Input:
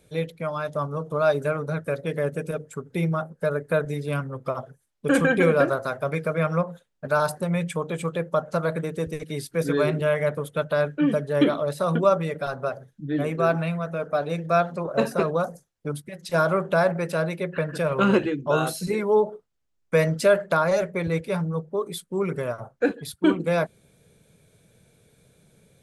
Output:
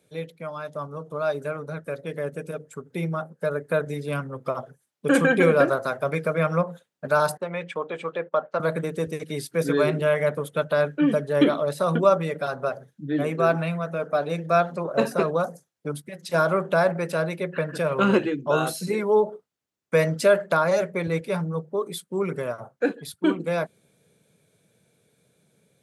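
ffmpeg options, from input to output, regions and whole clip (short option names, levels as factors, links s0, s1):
-filter_complex "[0:a]asettb=1/sr,asplit=3[s0][s1][s2];[s0]atrim=end=7.374[s3];[s1]atrim=start=7.37:end=8.6,asetpts=PTS-STARTPTS,afade=t=in:d=0.004:c=qsin,afade=t=out:st=1.226:d=0.004:c=qsin,agate=range=0.178:threshold=0.0112:ratio=16:release=100:detection=peak,highpass=260,lowpass=3200,lowshelf=f=350:g=-5.5[s4];[s2]atrim=start=8.596[s5];[s3][s4]acrossfade=d=0.004:c1=hsin:c2=qsin[s6];[s6][s5]acrossfade=d=0.004:c1=qsin:c2=hsin,highpass=140,dynaudnorm=f=630:g=11:m=3.76,volume=0.562"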